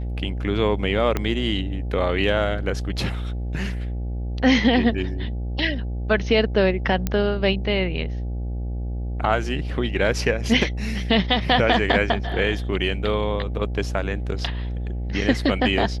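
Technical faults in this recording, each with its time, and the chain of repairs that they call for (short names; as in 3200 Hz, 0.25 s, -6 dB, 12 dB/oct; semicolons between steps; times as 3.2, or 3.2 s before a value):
buzz 60 Hz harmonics 14 -27 dBFS
1.17 pop -9 dBFS
7.07 pop -9 dBFS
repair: de-click; de-hum 60 Hz, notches 14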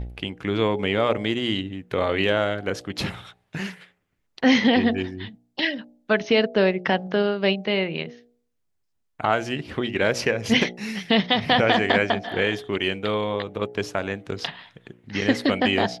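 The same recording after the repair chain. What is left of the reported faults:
1.17 pop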